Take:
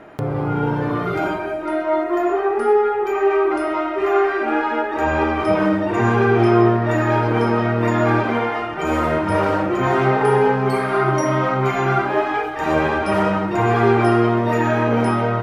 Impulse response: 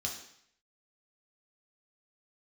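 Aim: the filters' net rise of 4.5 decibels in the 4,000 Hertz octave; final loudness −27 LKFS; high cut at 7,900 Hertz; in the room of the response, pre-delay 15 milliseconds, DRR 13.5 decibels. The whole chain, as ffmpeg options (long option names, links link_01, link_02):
-filter_complex "[0:a]lowpass=7900,equalizer=frequency=4000:width_type=o:gain=6.5,asplit=2[link_01][link_02];[1:a]atrim=start_sample=2205,adelay=15[link_03];[link_02][link_03]afir=irnorm=-1:irlink=0,volume=-15.5dB[link_04];[link_01][link_04]amix=inputs=2:normalize=0,volume=-9dB"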